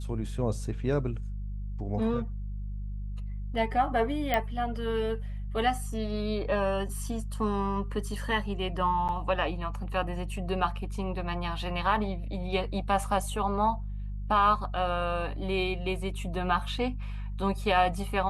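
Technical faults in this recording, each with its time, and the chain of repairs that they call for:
hum 50 Hz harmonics 4 -35 dBFS
4.34 pop -13 dBFS
9.08–9.09 gap 8.4 ms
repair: de-click; de-hum 50 Hz, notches 4; interpolate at 9.08, 8.4 ms

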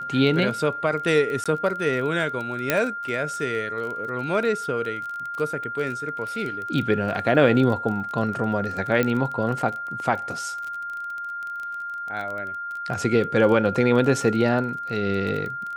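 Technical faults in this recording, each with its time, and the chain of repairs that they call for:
crackle 21/s -29 dBFS
tone 1400 Hz -29 dBFS
1.44–1.46 gap 16 ms
2.7 pop -4 dBFS
9.03 pop -10 dBFS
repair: de-click; notch 1400 Hz, Q 30; interpolate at 1.44, 16 ms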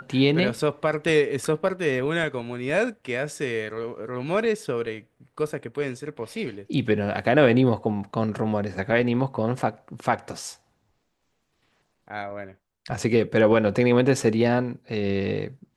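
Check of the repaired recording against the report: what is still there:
2.7 pop

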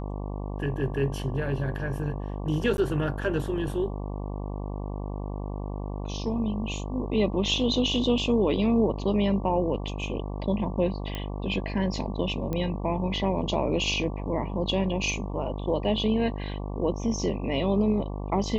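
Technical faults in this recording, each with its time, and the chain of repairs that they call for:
buzz 50 Hz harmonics 23 -33 dBFS
2.77–2.78 gap 11 ms
11.15 pop -18 dBFS
12.53 pop -18 dBFS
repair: de-click; de-hum 50 Hz, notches 23; interpolate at 2.77, 11 ms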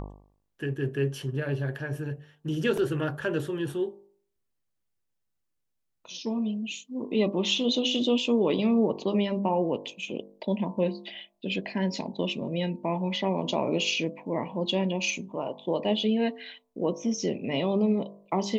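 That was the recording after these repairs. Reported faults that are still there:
none

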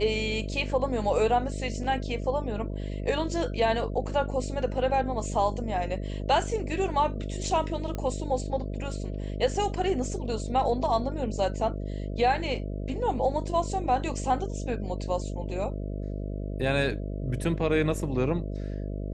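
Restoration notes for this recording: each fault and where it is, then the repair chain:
buzz 50 Hz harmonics 13 -33 dBFS
7.95 pop -20 dBFS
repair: de-click; de-hum 50 Hz, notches 13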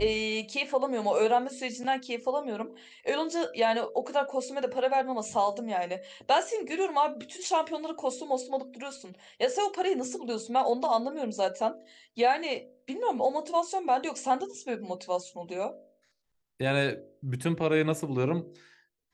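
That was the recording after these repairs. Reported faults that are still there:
none

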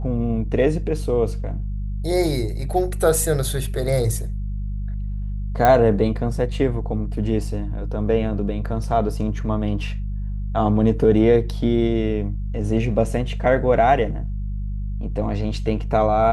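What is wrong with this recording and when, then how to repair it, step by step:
hum 50 Hz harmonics 4 -26 dBFS
5.65 pop -5 dBFS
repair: de-click; de-hum 50 Hz, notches 4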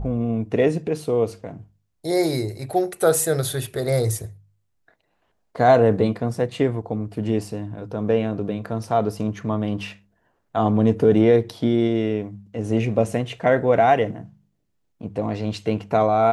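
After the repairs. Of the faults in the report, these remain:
none

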